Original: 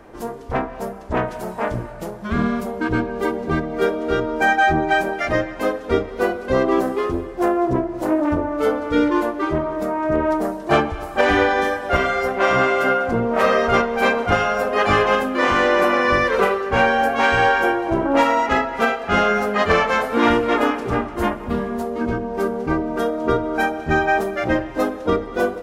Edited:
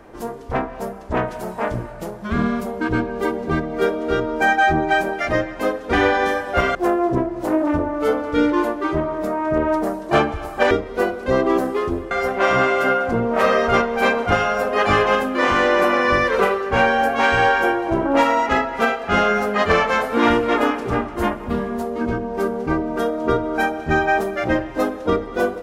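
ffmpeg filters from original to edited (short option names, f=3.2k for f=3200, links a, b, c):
-filter_complex "[0:a]asplit=5[a][b][c][d][e];[a]atrim=end=5.932[f];[b]atrim=start=11.288:end=12.112[g];[c]atrim=start=7.328:end=11.292[h];[d]atrim=start=5.928:end=7.332[i];[e]atrim=start=12.108[j];[f][g]acrossfade=d=0.004:c1=hsin:c2=hsin[k];[k][h]acrossfade=d=0.004:c1=hsin:c2=hsin[l];[l][i]acrossfade=d=0.004:c1=hsin:c2=hsin[m];[m][j]acrossfade=d=0.004:c1=hsin:c2=hsin"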